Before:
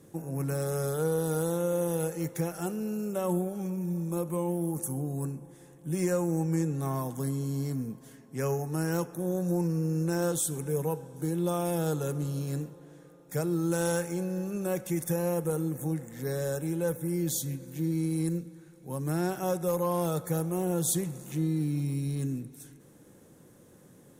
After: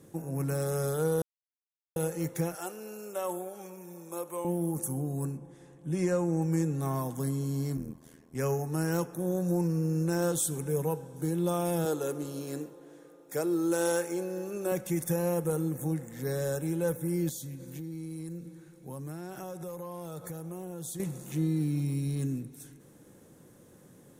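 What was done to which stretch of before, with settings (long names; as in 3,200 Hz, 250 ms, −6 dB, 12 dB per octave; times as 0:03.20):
0:01.22–0:01.96: silence
0:02.55–0:04.45: high-pass filter 510 Hz
0:05.37–0:06.42: high-frequency loss of the air 53 metres
0:07.77–0:08.35: amplitude modulation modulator 81 Hz, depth 85%
0:11.85–0:14.72: low shelf with overshoot 230 Hz −9 dB, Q 1.5
0:17.29–0:21.00: downward compressor 5 to 1, threshold −37 dBFS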